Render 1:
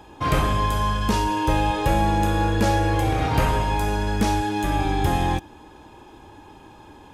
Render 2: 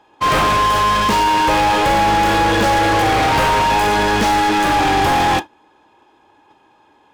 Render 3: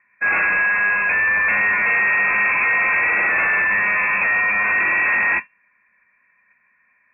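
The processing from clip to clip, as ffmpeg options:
-filter_complex "[0:a]asplit=2[s0][s1];[s1]highpass=f=720:p=1,volume=63.1,asoftclip=type=tanh:threshold=0.398[s2];[s0][s2]amix=inputs=2:normalize=0,lowpass=f=2800:p=1,volume=0.501,agate=range=0.0282:threshold=0.141:ratio=16:detection=peak"
-filter_complex "[0:a]asplit=2[s0][s1];[s1]acrusher=bits=2:mix=0:aa=0.5,volume=0.531[s2];[s0][s2]amix=inputs=2:normalize=0,lowpass=f=2300:t=q:w=0.5098,lowpass=f=2300:t=q:w=0.6013,lowpass=f=2300:t=q:w=0.9,lowpass=f=2300:t=q:w=2.563,afreqshift=-2700,volume=0.422"

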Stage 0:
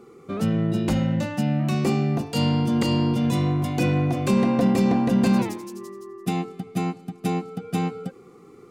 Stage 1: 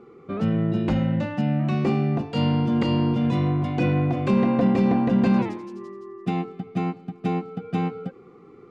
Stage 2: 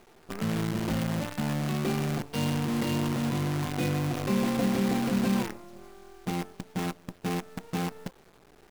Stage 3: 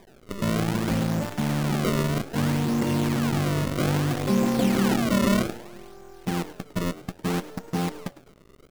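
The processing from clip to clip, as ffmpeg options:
-af "lowpass=2900"
-af "acrusher=bits=5:dc=4:mix=0:aa=0.000001,volume=0.447"
-filter_complex "[0:a]highshelf=f=3900:g=-11.5,acrusher=samples=31:mix=1:aa=0.000001:lfo=1:lforange=49.6:lforate=0.62,asplit=4[s0][s1][s2][s3];[s1]adelay=104,afreqshift=130,volume=0.133[s4];[s2]adelay=208,afreqshift=260,volume=0.0479[s5];[s3]adelay=312,afreqshift=390,volume=0.0174[s6];[s0][s4][s5][s6]amix=inputs=4:normalize=0,volume=1.68"

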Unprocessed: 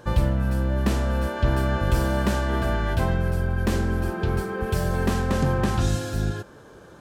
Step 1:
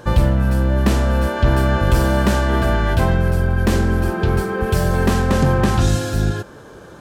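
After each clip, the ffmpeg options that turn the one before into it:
-af "acontrast=87"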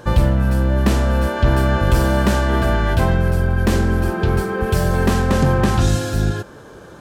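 -af anull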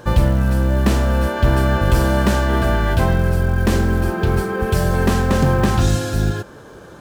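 -af "acrusher=bits=8:mode=log:mix=0:aa=0.000001"

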